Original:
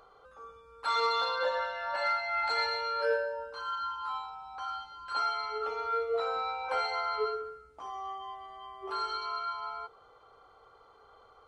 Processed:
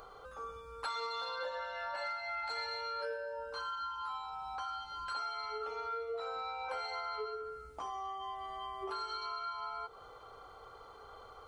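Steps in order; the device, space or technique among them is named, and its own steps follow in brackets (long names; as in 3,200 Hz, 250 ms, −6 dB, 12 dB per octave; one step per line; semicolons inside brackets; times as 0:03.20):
ASMR close-microphone chain (low-shelf EQ 110 Hz +5.5 dB; downward compressor 5 to 1, threshold −44 dBFS, peak gain reduction 17.5 dB; high-shelf EQ 6,700 Hz +7.5 dB)
level +5 dB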